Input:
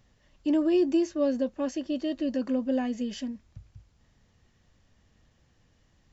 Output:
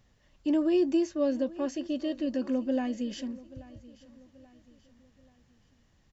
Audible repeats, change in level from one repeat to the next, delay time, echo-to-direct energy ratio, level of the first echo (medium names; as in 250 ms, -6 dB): 3, -7.5 dB, 832 ms, -18.5 dB, -19.5 dB